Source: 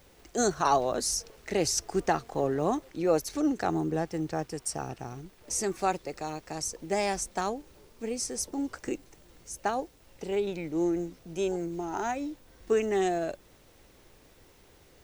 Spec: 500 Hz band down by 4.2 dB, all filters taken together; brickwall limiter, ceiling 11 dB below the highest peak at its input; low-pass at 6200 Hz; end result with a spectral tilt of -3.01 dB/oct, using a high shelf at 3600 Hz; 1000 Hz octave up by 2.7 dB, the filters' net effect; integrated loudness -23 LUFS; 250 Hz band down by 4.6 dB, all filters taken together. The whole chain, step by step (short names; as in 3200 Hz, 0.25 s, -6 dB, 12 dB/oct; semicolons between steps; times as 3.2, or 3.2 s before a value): LPF 6200 Hz; bell 250 Hz -4.5 dB; bell 500 Hz -6 dB; bell 1000 Hz +6 dB; high shelf 3600 Hz +6.5 dB; gain +11 dB; limiter -9.5 dBFS